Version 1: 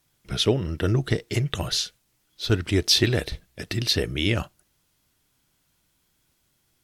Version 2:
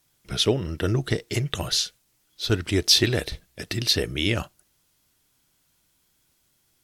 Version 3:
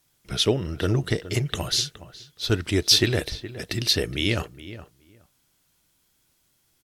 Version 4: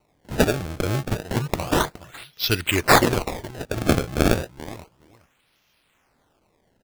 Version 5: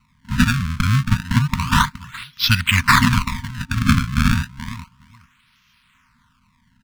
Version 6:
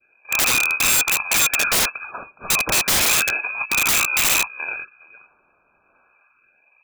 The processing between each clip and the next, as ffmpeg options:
-af "bass=f=250:g=-2,treble=f=4k:g=3"
-filter_complex "[0:a]asplit=2[a][b];[b]adelay=418,lowpass=f=2.1k:p=1,volume=-14dB,asplit=2[c][d];[d]adelay=418,lowpass=f=2.1k:p=1,volume=0.16[e];[a][c][e]amix=inputs=3:normalize=0"
-af "equalizer=f=2.6k:w=1.2:g=13.5,acrusher=samples=26:mix=1:aa=0.000001:lfo=1:lforange=41.6:lforate=0.31,volume=-1.5dB"
-af "lowpass=f=4k:p=1,afftfilt=real='re*(1-between(b*sr/4096,260,910))':imag='im*(1-between(b*sr/4096,260,910))':win_size=4096:overlap=0.75,alimiter=level_in=10dB:limit=-1dB:release=50:level=0:latency=1,volume=-1dB"
-af "lowpass=f=2.2k:t=q:w=0.5098,lowpass=f=2.2k:t=q:w=0.6013,lowpass=f=2.2k:t=q:w=0.9,lowpass=f=2.2k:t=q:w=2.563,afreqshift=-2600,adynamicequalizer=threshold=0.0355:dfrequency=1400:dqfactor=0.89:tfrequency=1400:tqfactor=0.89:attack=5:release=100:ratio=0.375:range=2.5:mode=boostabove:tftype=bell,aeval=exprs='(mod(4.22*val(0)+1,2)-1)/4.22':c=same"

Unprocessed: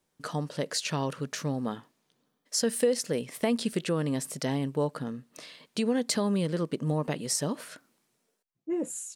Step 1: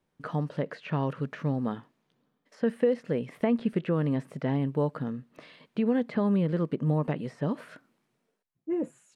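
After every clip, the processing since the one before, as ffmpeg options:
-filter_complex "[0:a]acrossover=split=2800[a][b];[b]acompressor=threshold=-49dB:ratio=4:attack=1:release=60[c];[a][c]amix=inputs=2:normalize=0,bass=f=250:g=4,treble=f=4k:g=-12,acrossover=split=3800[d][e];[e]alimiter=level_in=29.5dB:limit=-24dB:level=0:latency=1:release=230,volume=-29.5dB[f];[d][f]amix=inputs=2:normalize=0"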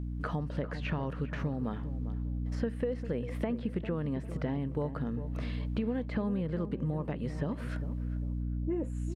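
-filter_complex "[0:a]aeval=exprs='val(0)+0.0112*(sin(2*PI*60*n/s)+sin(2*PI*2*60*n/s)/2+sin(2*PI*3*60*n/s)/3+sin(2*PI*4*60*n/s)/4+sin(2*PI*5*60*n/s)/5)':c=same,acompressor=threshold=-37dB:ratio=4,asplit=2[a][b];[b]adelay=400,lowpass=f=1.1k:p=1,volume=-11dB,asplit=2[c][d];[d]adelay=400,lowpass=f=1.1k:p=1,volume=0.38,asplit=2[e][f];[f]adelay=400,lowpass=f=1.1k:p=1,volume=0.38,asplit=2[g][h];[h]adelay=400,lowpass=f=1.1k:p=1,volume=0.38[i];[c][e][g][i]amix=inputs=4:normalize=0[j];[a][j]amix=inputs=2:normalize=0,volume=5dB"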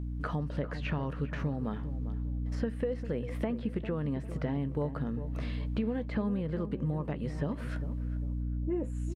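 -filter_complex "[0:a]asplit=2[a][b];[b]adelay=14,volume=-14dB[c];[a][c]amix=inputs=2:normalize=0"

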